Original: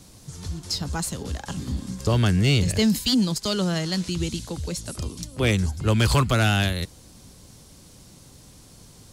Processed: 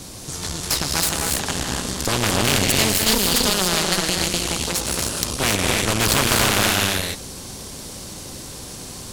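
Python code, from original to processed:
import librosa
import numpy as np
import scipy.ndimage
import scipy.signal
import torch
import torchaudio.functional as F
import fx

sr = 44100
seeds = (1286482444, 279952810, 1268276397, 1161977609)

y = fx.rev_gated(x, sr, seeds[0], gate_ms=320, shape='rising', drr_db=0.5)
y = fx.cheby_harmonics(y, sr, harmonics=(4, 8), levels_db=(-9, -26), full_scale_db=-5.5)
y = fx.spectral_comp(y, sr, ratio=2.0)
y = F.gain(torch.from_numpy(y), 2.0).numpy()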